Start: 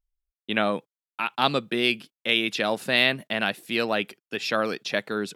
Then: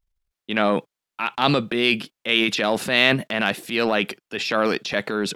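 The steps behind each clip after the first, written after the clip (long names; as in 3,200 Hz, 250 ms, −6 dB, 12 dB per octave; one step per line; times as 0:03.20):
high-shelf EQ 7,800 Hz −7.5 dB
transient designer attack −4 dB, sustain +8 dB
level +4.5 dB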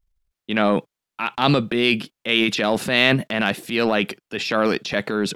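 low-shelf EQ 260 Hz +5.5 dB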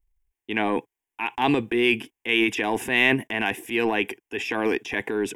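phaser with its sweep stopped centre 870 Hz, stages 8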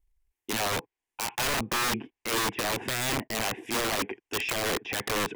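treble cut that deepens with the level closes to 1,300 Hz, closed at −21 dBFS
wrap-around overflow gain 22.5 dB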